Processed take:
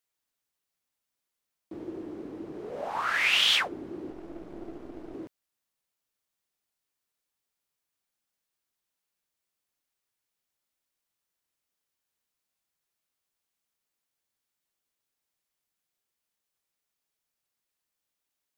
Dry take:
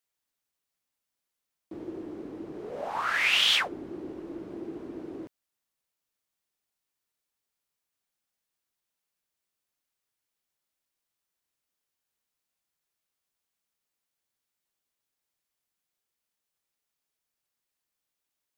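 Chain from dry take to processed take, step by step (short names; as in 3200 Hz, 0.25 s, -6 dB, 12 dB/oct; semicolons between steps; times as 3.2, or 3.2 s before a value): 4.1–5.14 half-wave gain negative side -12 dB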